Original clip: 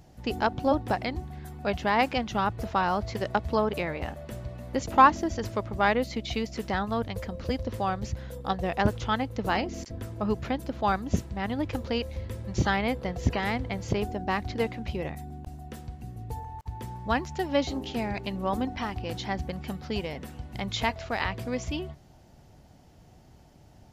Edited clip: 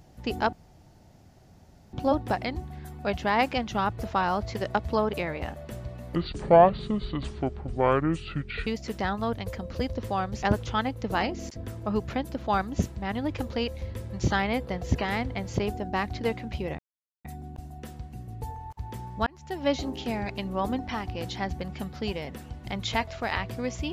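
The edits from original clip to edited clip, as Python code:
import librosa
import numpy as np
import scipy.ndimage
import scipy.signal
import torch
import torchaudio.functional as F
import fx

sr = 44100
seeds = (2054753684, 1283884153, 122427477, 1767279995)

y = fx.edit(x, sr, fx.insert_room_tone(at_s=0.53, length_s=1.4),
    fx.speed_span(start_s=4.75, length_s=1.61, speed=0.64),
    fx.cut(start_s=8.12, length_s=0.65),
    fx.insert_silence(at_s=15.13, length_s=0.46),
    fx.fade_in_span(start_s=17.15, length_s=0.43), tone=tone)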